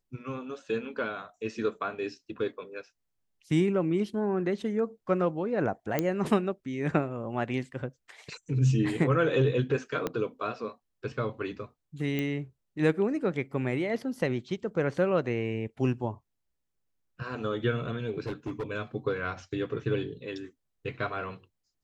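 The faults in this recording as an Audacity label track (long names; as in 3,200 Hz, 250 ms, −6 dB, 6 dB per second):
5.990000	5.990000	click −12 dBFS
10.070000	10.070000	click −16 dBFS
12.190000	12.190000	click −18 dBFS
18.260000	18.630000	clipping −29.5 dBFS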